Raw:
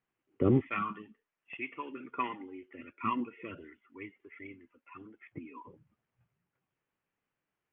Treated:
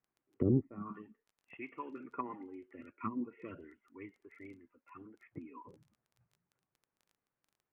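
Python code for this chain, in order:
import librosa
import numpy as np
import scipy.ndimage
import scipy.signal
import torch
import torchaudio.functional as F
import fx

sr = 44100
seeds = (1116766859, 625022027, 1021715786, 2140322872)

y = scipy.signal.sosfilt(scipy.signal.butter(2, 1700.0, 'lowpass', fs=sr, output='sos'), x)
y = fx.dmg_crackle(y, sr, seeds[0], per_s=14.0, level_db=-51.0)
y = fx.env_lowpass_down(y, sr, base_hz=400.0, full_db=-28.5)
y = y * librosa.db_to_amplitude(-2.5)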